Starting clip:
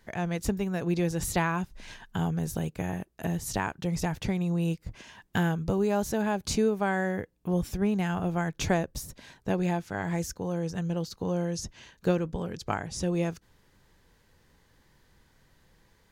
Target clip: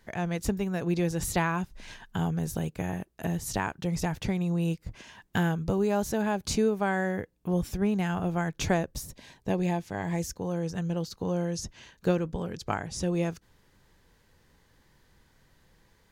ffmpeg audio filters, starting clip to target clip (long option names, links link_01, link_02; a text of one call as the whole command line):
ffmpeg -i in.wav -filter_complex "[0:a]asettb=1/sr,asplit=3[link_01][link_02][link_03];[link_01]atrim=end=9.084[link_04];[link_02]atrim=start=9.08:end=10.38,asetpts=PTS-STARTPTS,afade=type=in:duration=0.004:curve=qsin,afade=type=out:start_time=1.296:duration=0.004:curve=qsin,equalizer=frequency=1400:width_type=o:width=0.28:gain=-10[link_05];[link_03]atrim=start=10.376[link_06];[link_04][link_05]acrossfade=duration=0.004:curve1=hsin:curve2=qsin[link_07];[link_07][link_06]acrossfade=duration=0.004:curve1=qsin:curve2=hsin" out.wav